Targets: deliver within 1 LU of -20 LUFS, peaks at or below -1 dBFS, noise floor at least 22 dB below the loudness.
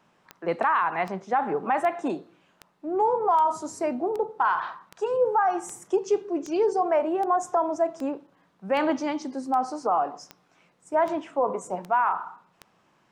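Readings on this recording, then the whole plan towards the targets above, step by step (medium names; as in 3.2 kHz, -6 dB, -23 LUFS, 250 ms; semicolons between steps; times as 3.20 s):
clicks found 17; loudness -26.0 LUFS; peak level -14.0 dBFS; loudness target -20.0 LUFS
-> de-click; trim +6 dB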